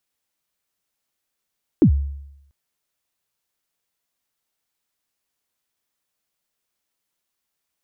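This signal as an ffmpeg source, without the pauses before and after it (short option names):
-f lavfi -i "aevalsrc='0.447*pow(10,-3*t/0.84)*sin(2*PI*(370*0.087/log(70/370)*(exp(log(70/370)*min(t,0.087)/0.087)-1)+70*max(t-0.087,0)))':d=0.69:s=44100"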